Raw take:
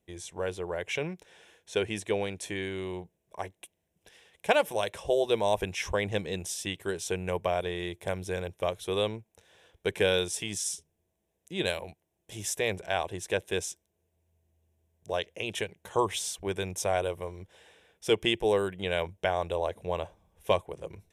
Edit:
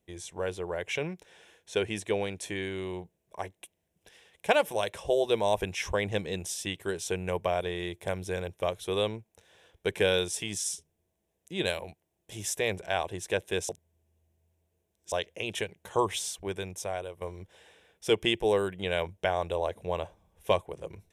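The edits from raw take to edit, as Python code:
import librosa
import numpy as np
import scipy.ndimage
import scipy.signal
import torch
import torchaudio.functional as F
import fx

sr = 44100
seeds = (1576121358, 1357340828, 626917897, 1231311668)

y = fx.edit(x, sr, fx.reverse_span(start_s=13.69, length_s=1.43),
    fx.fade_out_to(start_s=16.15, length_s=1.06, floor_db=-11.0), tone=tone)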